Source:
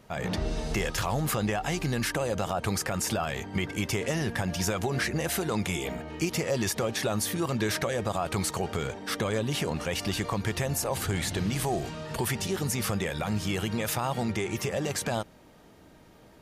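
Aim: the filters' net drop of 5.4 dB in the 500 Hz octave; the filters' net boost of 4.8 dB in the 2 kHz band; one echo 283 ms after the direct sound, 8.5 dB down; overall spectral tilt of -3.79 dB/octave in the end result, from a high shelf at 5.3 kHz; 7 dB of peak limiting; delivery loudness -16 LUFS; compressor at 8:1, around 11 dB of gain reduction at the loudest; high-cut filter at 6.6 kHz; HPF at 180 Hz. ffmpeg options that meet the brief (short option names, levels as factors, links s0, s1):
-af "highpass=180,lowpass=6600,equalizer=f=500:t=o:g=-7,equalizer=f=2000:t=o:g=7,highshelf=f=5300:g=-5.5,acompressor=threshold=0.0224:ratio=8,alimiter=level_in=1.33:limit=0.0631:level=0:latency=1,volume=0.75,aecho=1:1:283:0.376,volume=11.9"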